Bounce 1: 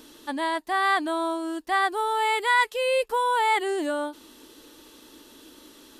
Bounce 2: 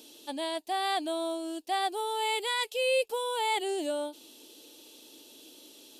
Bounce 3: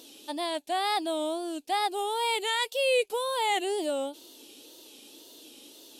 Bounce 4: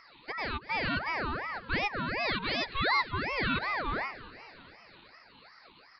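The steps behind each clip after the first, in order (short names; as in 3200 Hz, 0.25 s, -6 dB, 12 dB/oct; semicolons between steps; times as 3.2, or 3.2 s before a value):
HPF 560 Hz 6 dB/oct; band shelf 1400 Hz -13.5 dB 1.3 oct
wow and flutter 130 cents; gain +2 dB
downsampling 8000 Hz; frequency-shifting echo 0.234 s, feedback 63%, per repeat +87 Hz, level -17 dB; ring modulator with a swept carrier 1100 Hz, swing 50%, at 2.7 Hz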